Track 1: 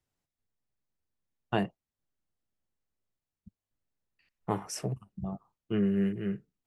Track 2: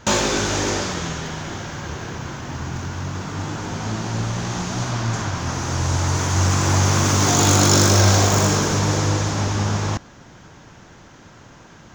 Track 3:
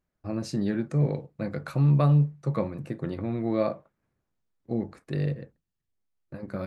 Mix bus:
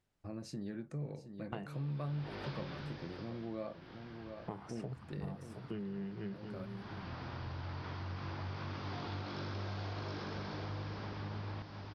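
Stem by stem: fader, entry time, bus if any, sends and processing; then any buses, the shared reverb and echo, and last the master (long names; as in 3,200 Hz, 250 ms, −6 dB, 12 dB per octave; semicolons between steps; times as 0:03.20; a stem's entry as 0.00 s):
+2.5 dB, 0.00 s, bus A, no send, echo send −16.5 dB, parametric band 9,900 Hz +8.5 dB; de-essing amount 90%
−12.5 dB, 1.65 s, bus A, no send, echo send −8.5 dB, elliptic low-pass filter 4,900 Hz, stop band 40 dB; automatic ducking −21 dB, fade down 0.70 s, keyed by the first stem
−6.5 dB, 0.00 s, no bus, no send, echo send −13 dB, no processing
bus A: 0.0 dB, low-pass filter 4,400 Hz 12 dB per octave; downward compressor, threshold −30 dBFS, peak gain reduction 10 dB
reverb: not used
echo: single-tap delay 720 ms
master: downward compressor 2 to 1, threshold −46 dBFS, peak gain reduction 12.5 dB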